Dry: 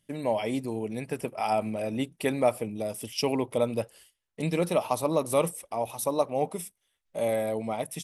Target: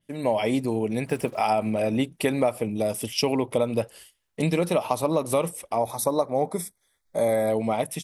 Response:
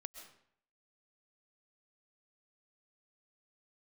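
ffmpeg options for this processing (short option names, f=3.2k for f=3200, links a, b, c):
-filter_complex "[0:a]dynaudnorm=f=150:g=3:m=7.5dB,asettb=1/sr,asplit=3[a][b][c];[a]atrim=end=1.064[d];[b]atrim=start=1.06:end=1.46,asetpts=PTS-STARTPTS,afade=t=in:d=0.004:c=qsin,afade=t=out:st=0.396:d=0.004:c=qsin,acrusher=bits=7:mix=0:aa=0.5[e];[c]atrim=start=1.456[f];[d][e]acrossfade=d=0.004:c1=hsin:c2=qsin[g];[g][f]acrossfade=d=0.004:c1=qsin:c2=hsin,asettb=1/sr,asplit=3[h][i][j];[h]atrim=end=5.784[k];[i]atrim=start=5.78:end=7.5,asetpts=PTS-STARTPTS,afade=t=in:d=0.004:c=qsin,afade=t=out:st=1.716:d=0.004:c=qsin,asuperstop=centerf=2800:order=4:qfactor=2.3[l];[j]atrim=start=7.496[m];[k][l]acrossfade=d=0.004:c1=hsin:c2=qsin[n];[n][m]acrossfade=d=0.004:c1=qsin:c2=hsin,acompressor=threshold=-19dB:ratio=5,adynamicequalizer=threshold=0.00631:dfrequency=5100:dqfactor=0.7:tfrequency=5100:tqfactor=0.7:attack=5:release=100:ratio=0.375:range=2:mode=cutabove:tftype=highshelf"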